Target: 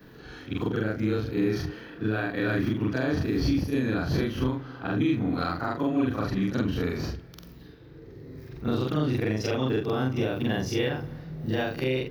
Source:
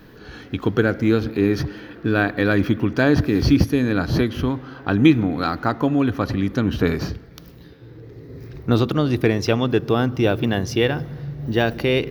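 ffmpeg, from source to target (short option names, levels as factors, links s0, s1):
-af "afftfilt=real='re':imag='-im':win_size=4096:overlap=0.75,alimiter=limit=0.158:level=0:latency=1:release=234"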